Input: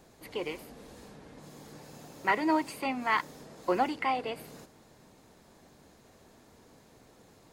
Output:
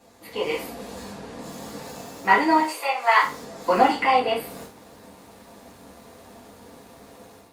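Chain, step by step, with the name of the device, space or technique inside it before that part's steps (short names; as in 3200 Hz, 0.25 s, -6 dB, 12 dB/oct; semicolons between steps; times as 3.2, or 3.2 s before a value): 2.6–3.22 steep high-pass 450 Hz 36 dB/oct; far-field microphone of a smart speaker (reverb RT60 0.35 s, pre-delay 4 ms, DRR -6 dB; HPF 100 Hz 12 dB/oct; AGC gain up to 8.5 dB; gain -2 dB; Opus 48 kbps 48000 Hz)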